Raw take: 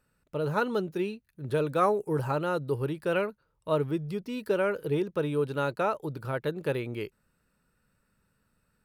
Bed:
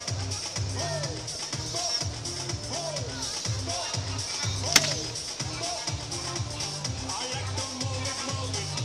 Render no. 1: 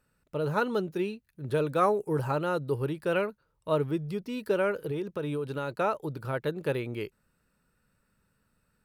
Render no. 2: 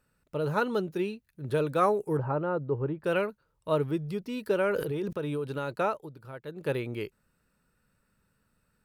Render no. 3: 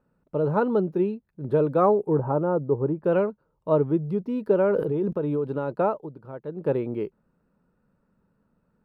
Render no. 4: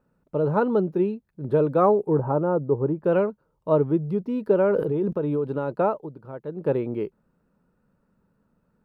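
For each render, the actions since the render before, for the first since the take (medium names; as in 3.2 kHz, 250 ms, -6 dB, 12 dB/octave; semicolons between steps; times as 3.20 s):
4.71–5.77 s: compression, threshold -28 dBFS
2.17–3.04 s: low-pass 1.3 kHz; 4.66–5.13 s: decay stretcher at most 36 dB/s; 5.85–6.72 s: dip -11 dB, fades 0.25 s
FFT filter 110 Hz 0 dB, 180 Hz +8 dB, 940 Hz +5 dB, 1.8 kHz -7 dB, 8.8 kHz -19 dB
trim +1 dB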